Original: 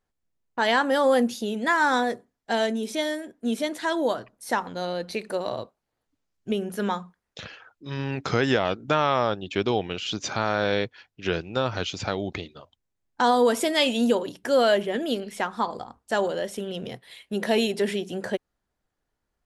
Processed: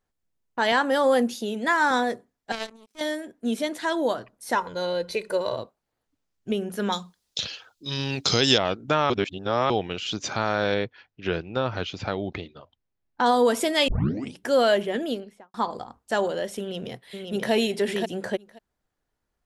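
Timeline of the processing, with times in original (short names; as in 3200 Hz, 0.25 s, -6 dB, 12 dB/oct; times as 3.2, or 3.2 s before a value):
0.72–1.91 HPF 170 Hz
2.52–3.01 power-law curve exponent 3
4.55–5.57 comb 2 ms
6.92–8.58 resonant high shelf 2700 Hz +13 dB, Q 1.5
9.1–9.7 reverse
10.74–13.26 air absorption 140 m
13.88 tape start 0.50 s
14.96–15.54 studio fade out
16.6–17.52 echo throw 0.53 s, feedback 10%, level -4.5 dB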